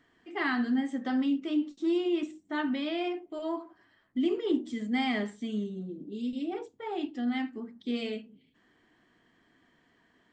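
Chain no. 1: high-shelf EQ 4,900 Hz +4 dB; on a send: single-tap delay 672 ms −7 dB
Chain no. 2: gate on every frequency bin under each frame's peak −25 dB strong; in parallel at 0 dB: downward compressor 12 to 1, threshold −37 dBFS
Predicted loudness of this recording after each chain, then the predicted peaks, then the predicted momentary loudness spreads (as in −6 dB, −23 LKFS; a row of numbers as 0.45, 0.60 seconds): −31.5, −30.0 LKFS; −17.0, −16.0 dBFS; 12, 8 LU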